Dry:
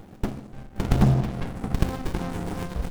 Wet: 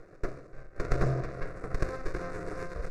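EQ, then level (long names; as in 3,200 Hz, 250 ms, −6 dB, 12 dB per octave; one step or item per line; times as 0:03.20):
low-pass filter 5,000 Hz 12 dB per octave
parametric band 72 Hz −11 dB 1.9 octaves
phaser with its sweep stopped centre 850 Hz, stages 6
0.0 dB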